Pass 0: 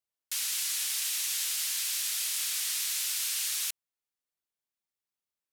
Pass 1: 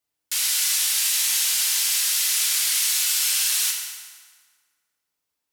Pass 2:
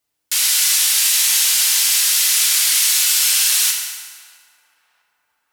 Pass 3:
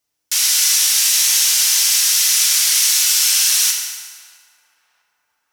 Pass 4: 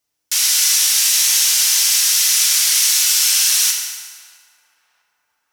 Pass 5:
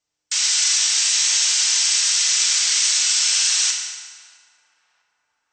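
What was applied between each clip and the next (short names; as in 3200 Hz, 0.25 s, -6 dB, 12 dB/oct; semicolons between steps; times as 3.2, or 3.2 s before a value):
FDN reverb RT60 1.7 s, low-frequency decay 1.1×, high-frequency decay 0.75×, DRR -0.5 dB; gain +7 dB
narrowing echo 0.655 s, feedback 58%, band-pass 750 Hz, level -22 dB; gain +6.5 dB
bell 5800 Hz +6.5 dB 0.37 oct; gain -1 dB
nothing audible
brick-wall FIR low-pass 8400 Hz; gain -2 dB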